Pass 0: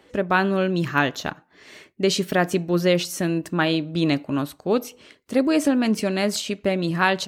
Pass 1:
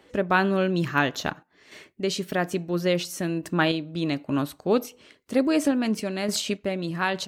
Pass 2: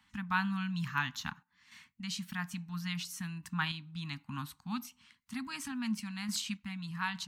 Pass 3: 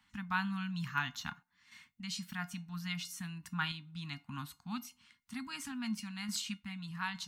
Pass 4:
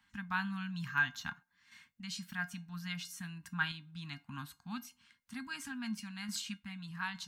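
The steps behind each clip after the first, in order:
sample-and-hold tremolo
elliptic band-stop filter 230–930 Hz, stop band 50 dB; level −8 dB
tuned comb filter 710 Hz, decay 0.18 s, harmonics all, mix 70%; level +7 dB
hollow resonant body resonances 520/1,600 Hz, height 15 dB, ringing for 95 ms; level −2 dB

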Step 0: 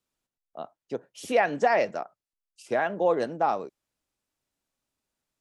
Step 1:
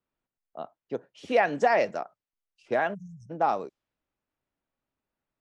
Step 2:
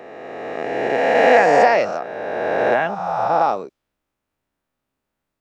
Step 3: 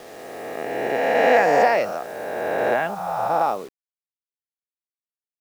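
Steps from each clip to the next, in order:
time-frequency box erased 0:02.94–0:03.30, 200–5,200 Hz; low-pass that shuts in the quiet parts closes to 2,200 Hz, open at −24 dBFS
peak hold with a rise ahead of every peak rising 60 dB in 2.56 s; level +4 dB
bit reduction 7 bits; level −3.5 dB

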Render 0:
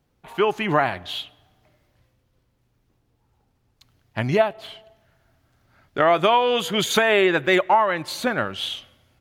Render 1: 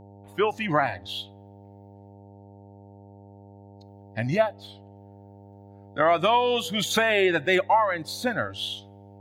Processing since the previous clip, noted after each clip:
noise reduction from a noise print of the clip's start 14 dB
hum with harmonics 100 Hz, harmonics 9, −45 dBFS −4 dB per octave
level −3 dB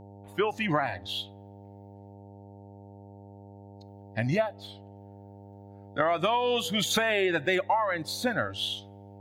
downward compressor, threshold −22 dBFS, peak gain reduction 7 dB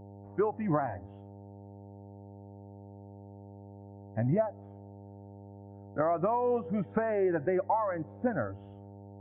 Gaussian smoothing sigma 6.9 samples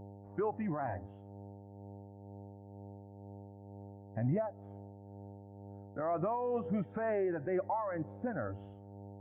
brickwall limiter −25 dBFS, peak gain reduction 9.5 dB
amplitude tremolo 2.1 Hz, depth 38%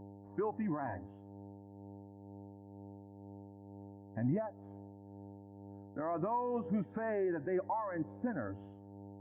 hollow resonant body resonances 270/970/1,700 Hz, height 8 dB, ringing for 20 ms
level −4.5 dB

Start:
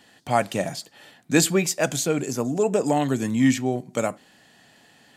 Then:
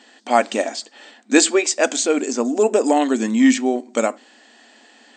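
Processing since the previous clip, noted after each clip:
brick-wall band-pass 210–8,600 Hz
level +5.5 dB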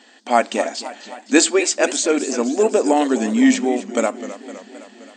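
feedback echo with a swinging delay time 259 ms, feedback 63%, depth 146 cents, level −14 dB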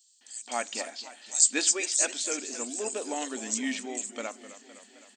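first-order pre-emphasis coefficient 0.9
multiband delay without the direct sound highs, lows 210 ms, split 4,700 Hz

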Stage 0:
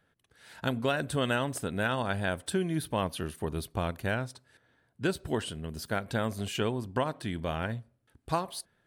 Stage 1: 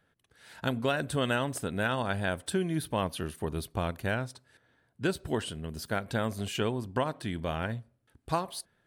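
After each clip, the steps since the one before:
no processing that can be heard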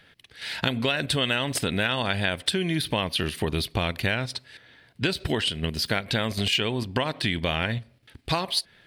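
in parallel at +2 dB: output level in coarse steps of 19 dB
on the sum: flat-topped bell 3,100 Hz +11 dB
downward compressor 4 to 1, threshold −29 dBFS, peak gain reduction 10.5 dB
level +6.5 dB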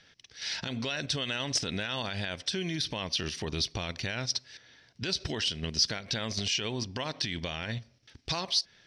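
brickwall limiter −17.5 dBFS, peak gain reduction 10 dB
low-pass with resonance 5,700 Hz, resonance Q 9.1
level −6 dB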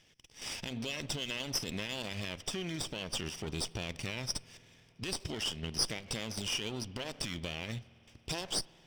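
lower of the sound and its delayed copy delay 0.36 ms
convolution reverb RT60 4.2 s, pre-delay 48 ms, DRR 20 dB
level −4 dB

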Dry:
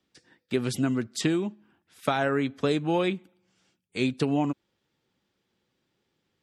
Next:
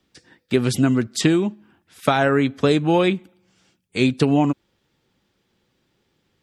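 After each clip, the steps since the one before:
low-shelf EQ 63 Hz +10 dB
level +7.5 dB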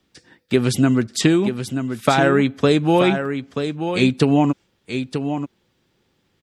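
single-tap delay 932 ms −8 dB
level +1.5 dB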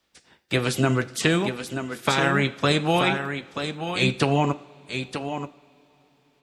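ceiling on every frequency bin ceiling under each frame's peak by 15 dB
flanger 0.57 Hz, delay 3.2 ms, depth 4.6 ms, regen −65%
on a send at −14 dB: convolution reverb, pre-delay 3 ms
on the sum: level −1.5 dB

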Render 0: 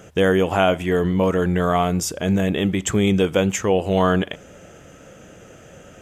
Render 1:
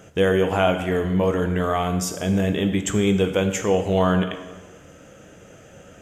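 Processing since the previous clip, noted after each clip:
dense smooth reverb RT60 1.2 s, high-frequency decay 0.8×, DRR 6.5 dB
level −3 dB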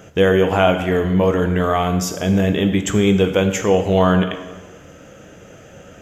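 parametric band 9,000 Hz −12 dB 0.3 octaves
level +4.5 dB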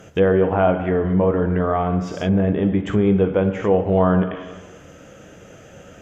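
treble cut that deepens with the level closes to 1,300 Hz, closed at −14 dBFS
level −1.5 dB

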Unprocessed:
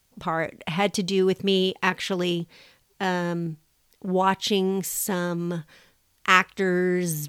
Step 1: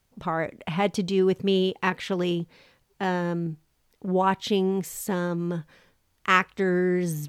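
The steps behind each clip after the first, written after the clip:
high-shelf EQ 2,400 Hz −8.5 dB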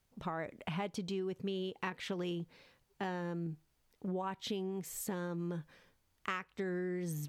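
downward compressor 10 to 1, threshold −28 dBFS, peak gain reduction 14.5 dB
level −6.5 dB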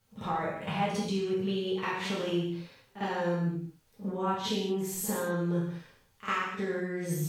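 backwards echo 52 ms −12.5 dB
reverb whose tail is shaped and stops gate 260 ms falling, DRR −7 dB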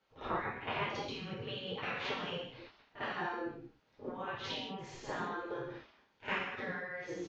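gate on every frequency bin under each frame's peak −10 dB weak
high-frequency loss of the air 230 metres
downsampling to 16,000 Hz
level +2.5 dB

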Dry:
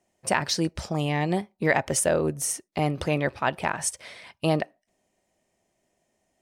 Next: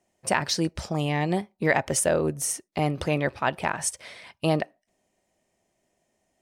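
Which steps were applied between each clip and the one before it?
no processing that can be heard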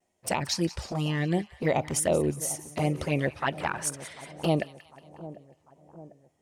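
pitch vibrato 2.1 Hz 72 cents
flanger swept by the level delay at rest 11.4 ms, full sweep at −19 dBFS
echo with a time of its own for lows and highs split 1,000 Hz, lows 747 ms, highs 181 ms, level −16 dB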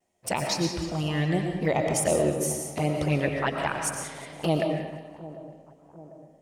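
comb and all-pass reverb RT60 1.1 s, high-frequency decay 0.65×, pre-delay 75 ms, DRR 2.5 dB

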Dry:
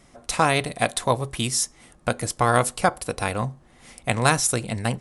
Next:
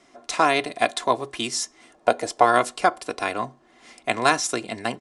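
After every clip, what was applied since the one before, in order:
gain on a spectral selection 0:01.95–0:02.45, 420–970 Hz +7 dB
three-way crossover with the lows and the highs turned down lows −22 dB, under 190 Hz, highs −23 dB, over 7,900 Hz
comb filter 2.9 ms, depth 46%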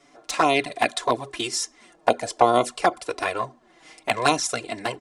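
flanger swept by the level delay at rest 7.1 ms, full sweep at −14.5 dBFS
level +3 dB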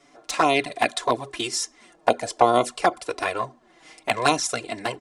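no processing that can be heard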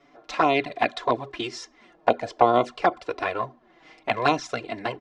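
high-frequency loss of the air 200 metres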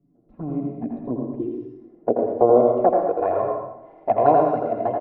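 low-pass filter sweep 180 Hz → 680 Hz, 0:00.30–0:03.23
single-tap delay 83 ms −4.5 dB
dense smooth reverb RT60 0.73 s, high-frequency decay 0.9×, pre-delay 90 ms, DRR 3 dB

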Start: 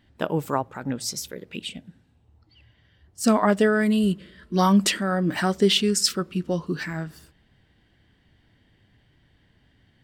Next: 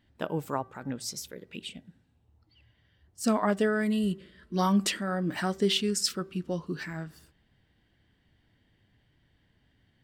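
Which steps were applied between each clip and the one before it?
hum removal 386.6 Hz, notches 5
level −6.5 dB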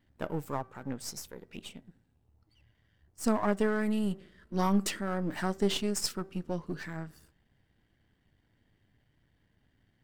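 gain on one half-wave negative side −7 dB
parametric band 3,500 Hz −4.5 dB 1.2 octaves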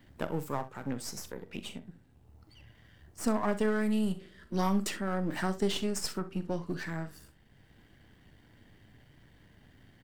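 on a send: ambience of single reflections 42 ms −14 dB, 65 ms −16.5 dB
on the sum: multiband upward and downward compressor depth 40%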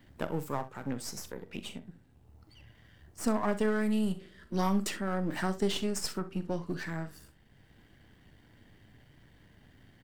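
no processing that can be heard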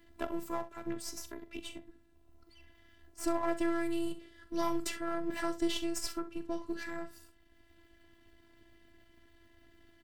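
phases set to zero 336 Hz

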